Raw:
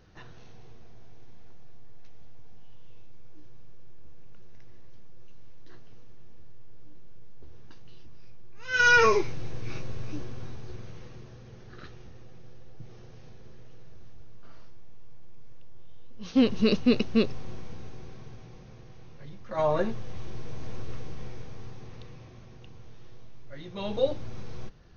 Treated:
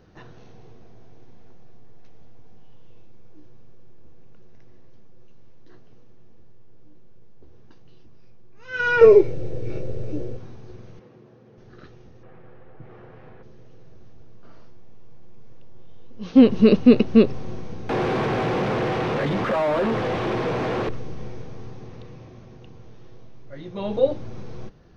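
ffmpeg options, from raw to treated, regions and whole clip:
ffmpeg -i in.wav -filter_complex "[0:a]asettb=1/sr,asplit=3[link_01][link_02][link_03];[link_01]atrim=end=9.014[link_04];[link_02]atrim=start=9.01:end=10.37,asetpts=PTS-STARTPTS,afade=type=in:duration=0.004:curve=qsin,afade=type=out:start_time=1.356:duration=0.004:curve=qsin,lowshelf=frequency=750:width_type=q:width=3:gain=6,aecho=1:1:2.2:0.39,atrim=end_sample=59976[link_05];[link_03]atrim=start=10.366[link_06];[link_04][link_05]acrossfade=duration=0.004:curve1=hsin:curve2=qsin[link_07];[link_07][link_06]acrossfade=duration=0.004:curve1=qsin:curve2=hsin,asettb=1/sr,asplit=3[link_08][link_09][link_10];[link_08]atrim=end=10.994[link_11];[link_09]atrim=start=10.99:end=11.58,asetpts=PTS-STARTPTS,afade=type=in:duration=0.004:curve=qsin,afade=type=out:start_time=0.586:duration=0.004:curve=qsin,highpass=170,aemphasis=mode=reproduction:type=75kf[link_12];[link_10]atrim=start=11.576[link_13];[link_11][link_12]acrossfade=duration=0.004:curve1=hsin:curve2=qsin[link_14];[link_14][link_13]acrossfade=duration=0.004:curve1=qsin:curve2=hsin,asettb=1/sr,asplit=3[link_15][link_16][link_17];[link_15]atrim=end=12.234[link_18];[link_16]atrim=start=12.23:end=13.43,asetpts=PTS-STARTPTS,afade=type=in:duration=0.004:curve=qsin,afade=type=out:start_time=1.196:duration=0.004:curve=qsin,lowpass=2100,equalizer=frequency=1600:width_type=o:width=2.9:gain=12.5[link_19];[link_17]atrim=start=13.426[link_20];[link_18][link_19]acrossfade=duration=0.004:curve1=hsin:curve2=qsin[link_21];[link_21][link_20]acrossfade=duration=0.004:curve1=qsin:curve2=hsin,asettb=1/sr,asplit=3[link_22][link_23][link_24];[link_22]atrim=end=17.894[link_25];[link_23]atrim=start=17.89:end=20.89,asetpts=PTS-STARTPTS,afade=type=in:duration=0.004:curve=qsin,afade=type=out:start_time=2.996:duration=0.004:curve=qsin,acompressor=threshold=-37dB:ratio=6:attack=3.2:release=140:knee=1:detection=peak,asplit=2[link_26][link_27];[link_27]highpass=frequency=720:poles=1,volume=44dB,asoftclip=type=tanh:threshold=-23dB[link_28];[link_26][link_28]amix=inputs=2:normalize=0,lowpass=frequency=2900:poles=1,volume=-6dB[link_29];[link_24]atrim=start=20.886[link_30];[link_25][link_29]acrossfade=duration=0.004:curve1=hsin:curve2=qsin[link_31];[link_31][link_30]acrossfade=duration=0.004:curve1=qsin:curve2=hsin,acrossover=split=4000[link_32][link_33];[link_33]acompressor=threshold=-56dB:ratio=4:attack=1:release=60[link_34];[link_32][link_34]amix=inputs=2:normalize=0,equalizer=frequency=340:width=0.33:gain=8,dynaudnorm=framelen=810:gausssize=13:maxgain=11.5dB,volume=-1dB" out.wav

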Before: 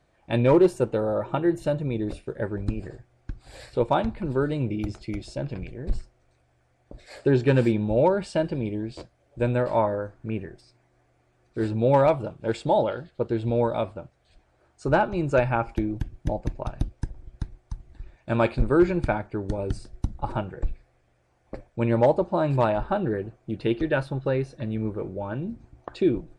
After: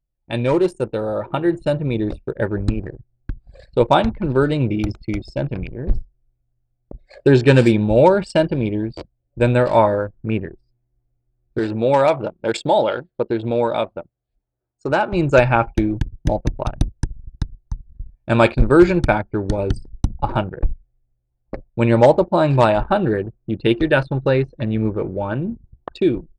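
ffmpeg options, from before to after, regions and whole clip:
ffmpeg -i in.wav -filter_complex "[0:a]asettb=1/sr,asplit=3[link_01][link_02][link_03];[link_01]atrim=end=11.594[link_04];[link_02]atrim=start=11.59:end=15.12,asetpts=PTS-STARTPTS,afade=type=in:duration=0.004:curve=qsin,afade=type=out:start_time=3.526:duration=0.004:curve=qsin,highpass=frequency=270:poles=1,acompressor=threshold=-29dB:ratio=1.5:attack=3.2:release=140:knee=1:detection=peak[link_05];[link_03]atrim=start=15.116[link_06];[link_04][link_05]acrossfade=duration=0.004:curve1=hsin:curve2=qsin[link_07];[link_07][link_06]acrossfade=duration=0.004:curve1=qsin:curve2=hsin,anlmdn=1,highshelf=frequency=3100:gain=10,dynaudnorm=framelen=640:gausssize=5:maxgain=11.5dB" out.wav

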